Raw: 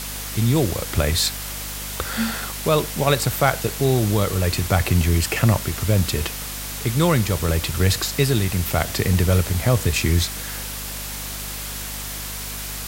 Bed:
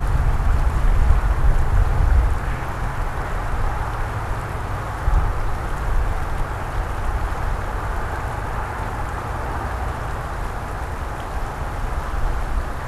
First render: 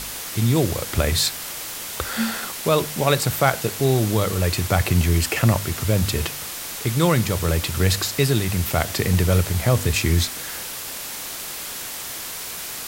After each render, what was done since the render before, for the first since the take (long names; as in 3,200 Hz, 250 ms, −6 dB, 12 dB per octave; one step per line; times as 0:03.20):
hum removal 50 Hz, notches 5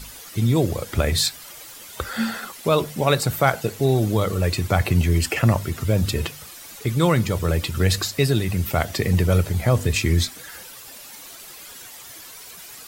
broadband denoise 12 dB, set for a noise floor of −32 dBFS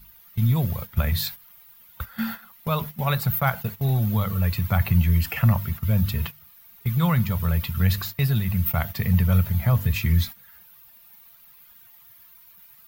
noise gate −28 dBFS, range −12 dB
drawn EQ curve 210 Hz 0 dB, 310 Hz −20 dB, 950 Hz −3 dB, 3,300 Hz −6 dB, 8,600 Hz −16 dB, 15,000 Hz +10 dB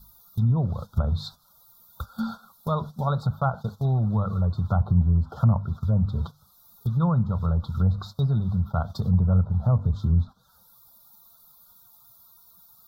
Chebyshev band-stop filter 1,400–3,600 Hz, order 4
treble cut that deepens with the level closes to 1,000 Hz, closed at −17.5 dBFS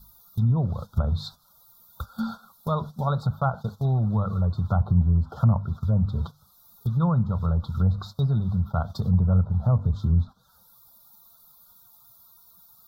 no processing that can be heard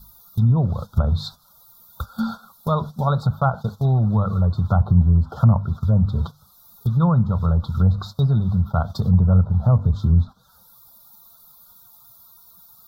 level +5 dB